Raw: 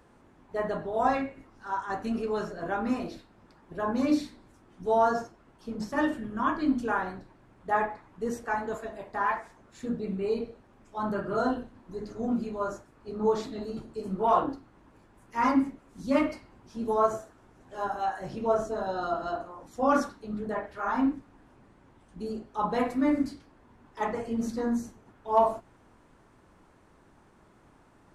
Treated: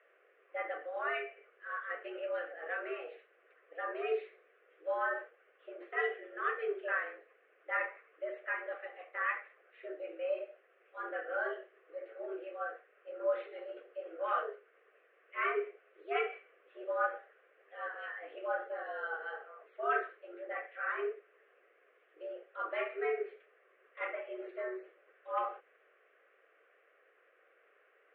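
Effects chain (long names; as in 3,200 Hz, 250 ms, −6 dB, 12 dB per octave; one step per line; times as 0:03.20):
single-sideband voice off tune +140 Hz 340–2,800 Hz
phaser with its sweep stopped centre 2,200 Hz, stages 4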